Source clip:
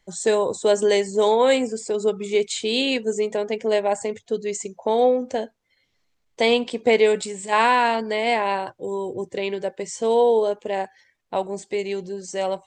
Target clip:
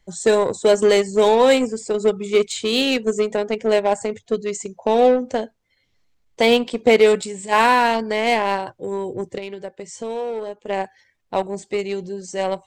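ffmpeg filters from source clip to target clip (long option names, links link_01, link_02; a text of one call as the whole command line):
ffmpeg -i in.wav -filter_complex "[0:a]lowshelf=frequency=170:gain=7.5,asplit=2[link_01][link_02];[link_02]acrusher=bits=2:mix=0:aa=0.5,volume=-9.5dB[link_03];[link_01][link_03]amix=inputs=2:normalize=0,asplit=3[link_04][link_05][link_06];[link_04]afade=type=out:start_time=9.37:duration=0.02[link_07];[link_05]acompressor=threshold=-34dB:ratio=2,afade=type=in:start_time=9.37:duration=0.02,afade=type=out:start_time=10.67:duration=0.02[link_08];[link_06]afade=type=in:start_time=10.67:duration=0.02[link_09];[link_07][link_08][link_09]amix=inputs=3:normalize=0" out.wav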